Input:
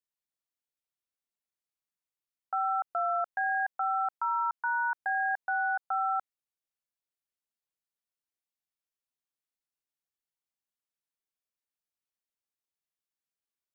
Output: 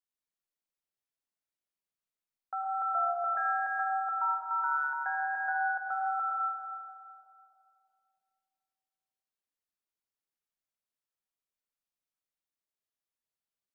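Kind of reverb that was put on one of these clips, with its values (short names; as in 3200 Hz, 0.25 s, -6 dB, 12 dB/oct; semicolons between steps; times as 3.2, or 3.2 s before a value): digital reverb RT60 2.6 s, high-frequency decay 0.35×, pre-delay 60 ms, DRR -1 dB; gain -5 dB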